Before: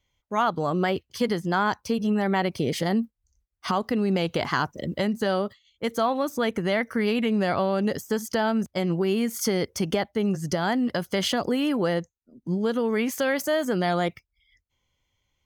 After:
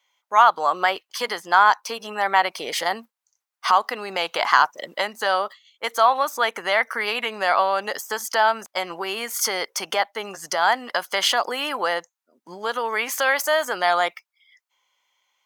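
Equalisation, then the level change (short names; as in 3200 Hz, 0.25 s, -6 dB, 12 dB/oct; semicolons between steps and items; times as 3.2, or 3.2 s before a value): resonant high-pass 920 Hz, resonance Q 1.6; +6.5 dB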